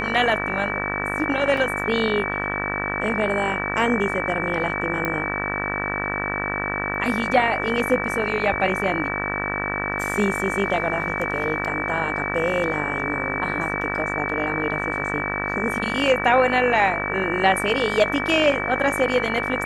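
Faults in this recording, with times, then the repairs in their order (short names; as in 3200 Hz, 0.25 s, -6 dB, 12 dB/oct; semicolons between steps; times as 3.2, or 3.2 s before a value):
buzz 50 Hz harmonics 38 -28 dBFS
tone 2300 Hz -27 dBFS
1.57 gap 3.4 ms
5.05 pop -11 dBFS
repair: de-click; de-hum 50 Hz, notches 38; notch 2300 Hz, Q 30; interpolate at 1.57, 3.4 ms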